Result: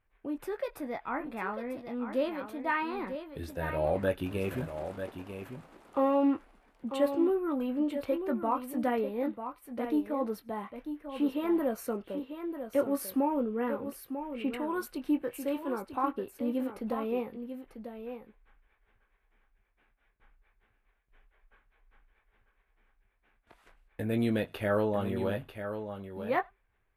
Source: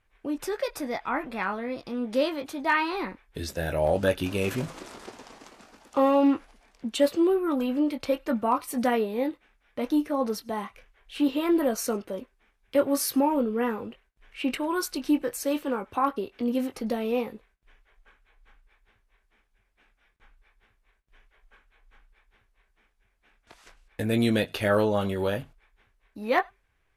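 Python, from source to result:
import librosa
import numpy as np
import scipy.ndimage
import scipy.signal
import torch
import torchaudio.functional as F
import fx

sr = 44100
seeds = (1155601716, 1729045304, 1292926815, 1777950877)

p1 = fx.peak_eq(x, sr, hz=5900.0, db=-14.0, octaves=1.5)
p2 = p1 + fx.echo_single(p1, sr, ms=944, db=-9.0, dry=0)
y = p2 * librosa.db_to_amplitude(-5.0)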